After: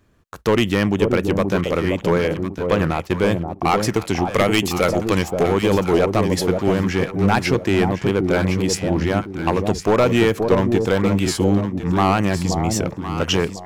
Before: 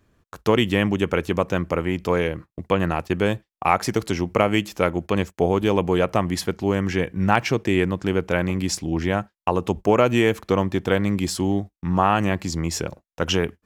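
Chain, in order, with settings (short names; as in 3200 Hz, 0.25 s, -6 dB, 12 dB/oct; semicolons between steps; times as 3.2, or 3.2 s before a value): 4.32–5.43 high shelf 2200 Hz +9.5 dB; overloaded stage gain 13 dB; echo with dull and thin repeats by turns 0.528 s, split 840 Hz, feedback 52%, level -4 dB; record warp 78 rpm, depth 100 cents; gain +3 dB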